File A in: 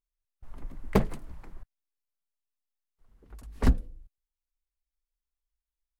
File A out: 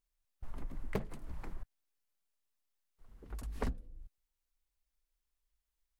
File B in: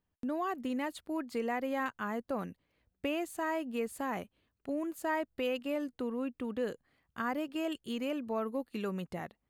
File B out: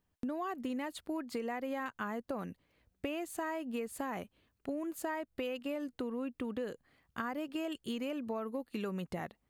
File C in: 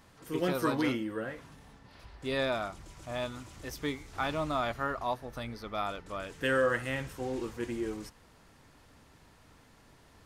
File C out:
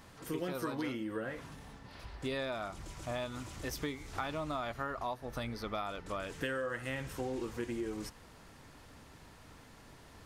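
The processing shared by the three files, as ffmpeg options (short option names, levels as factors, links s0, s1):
-af "acompressor=threshold=0.0126:ratio=6,volume=1.5"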